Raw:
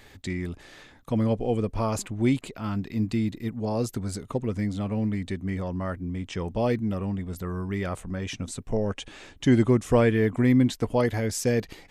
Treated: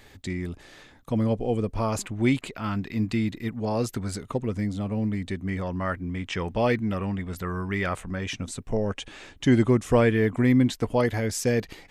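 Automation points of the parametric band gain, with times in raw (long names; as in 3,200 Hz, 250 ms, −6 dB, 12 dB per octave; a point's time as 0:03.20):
parametric band 1,900 Hz 2.1 octaves
0:01.66 −1 dB
0:02.30 +6 dB
0:04.10 +6 dB
0:04.84 −3 dB
0:05.92 +8.5 dB
0:07.89 +8.5 dB
0:08.50 +2 dB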